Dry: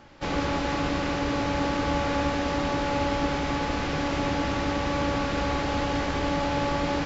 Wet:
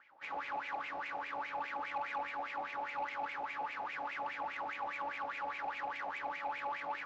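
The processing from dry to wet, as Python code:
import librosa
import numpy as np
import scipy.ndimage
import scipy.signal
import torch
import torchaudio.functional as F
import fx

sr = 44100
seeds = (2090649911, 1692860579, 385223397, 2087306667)

y = fx.wah_lfo(x, sr, hz=4.9, low_hz=730.0, high_hz=2400.0, q=7.6)
y = 10.0 ** (-32.0 / 20.0) * np.tanh(y / 10.0 ** (-32.0 / 20.0))
y = F.gain(torch.from_numpy(y), 1.0).numpy()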